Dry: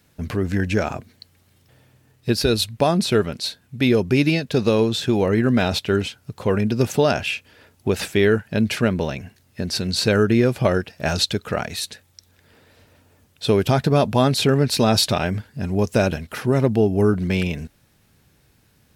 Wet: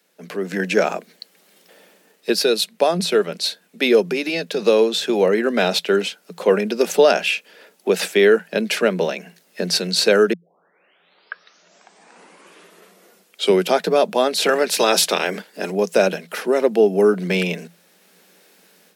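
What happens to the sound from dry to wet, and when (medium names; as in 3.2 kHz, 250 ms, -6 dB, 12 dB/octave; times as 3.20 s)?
4.00–4.61 s: compression, threshold -17 dBFS
10.33 s: tape start 3.43 s
14.40–15.70 s: spectral peaks clipped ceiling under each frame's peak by 14 dB
whole clip: Chebyshev high-pass 170 Hz, order 10; level rider; graphic EQ 250/500/1000 Hz -11/+5/-4 dB; trim -1 dB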